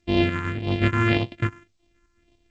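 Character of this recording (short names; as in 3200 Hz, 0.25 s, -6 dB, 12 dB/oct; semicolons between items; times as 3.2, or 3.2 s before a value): a buzz of ramps at a fixed pitch in blocks of 128 samples; tremolo saw up 3.4 Hz, depth 55%; phasing stages 4, 1.8 Hz, lowest notch 620–1400 Hz; G.722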